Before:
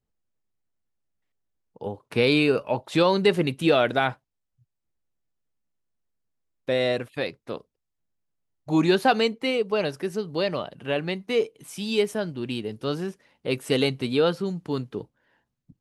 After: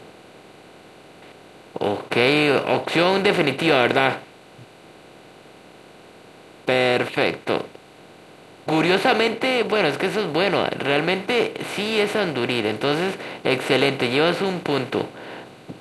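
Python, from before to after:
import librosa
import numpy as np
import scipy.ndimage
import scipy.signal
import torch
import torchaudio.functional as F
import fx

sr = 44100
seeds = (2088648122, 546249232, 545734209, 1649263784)

y = fx.bin_compress(x, sr, power=0.4)
y = fx.dynamic_eq(y, sr, hz=2000.0, q=1.3, threshold_db=-37.0, ratio=4.0, max_db=5)
y = y * 10.0 ** (-3.0 / 20.0)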